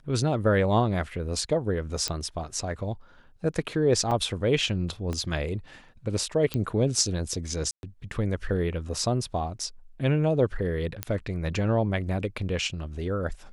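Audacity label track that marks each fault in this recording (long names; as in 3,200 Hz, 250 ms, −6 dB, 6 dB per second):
2.080000	2.080000	click −11 dBFS
4.110000	4.110000	drop-out 4.3 ms
5.130000	5.130000	click −19 dBFS
6.540000	6.540000	click −15 dBFS
7.710000	7.830000	drop-out 121 ms
11.030000	11.030000	click −12 dBFS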